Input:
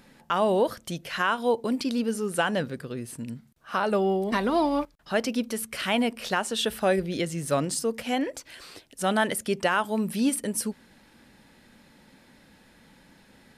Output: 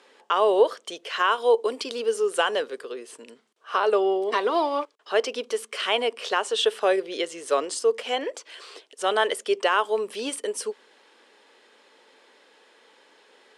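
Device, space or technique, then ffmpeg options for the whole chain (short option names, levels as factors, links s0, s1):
phone speaker on a table: -filter_complex "[0:a]asettb=1/sr,asplit=3[s0][s1][s2];[s0]atrim=end=1.314[s3];[s1]atrim=start=1.31:end=2.92,asetpts=PTS-STARTPTS,afade=t=in:d=0.004:c=qsin,afade=t=out:st=1.606:d=0.004:c=qsin,highshelf=f=9600:g=9[s4];[s2]atrim=start=2.916[s5];[s3][s4]acrossfade=d=0.004:c1=hsin:c2=qsin[s6];[s6][s5]acrossfade=d=0.004:c1=qsin:c2=hsin,highpass=f=380:w=0.5412,highpass=f=380:w=1.3066,equalizer=f=430:t=q:w=4:g=10,equalizer=f=1100:t=q:w=4:g=6,equalizer=f=3100:t=q:w=4:g=6,lowpass=f=8900:w=0.5412,lowpass=f=8900:w=1.3066"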